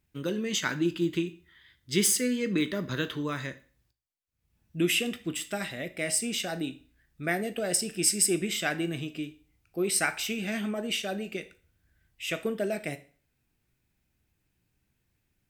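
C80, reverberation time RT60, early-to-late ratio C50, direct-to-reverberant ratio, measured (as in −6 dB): 21.0 dB, 0.40 s, 16.5 dB, 10.5 dB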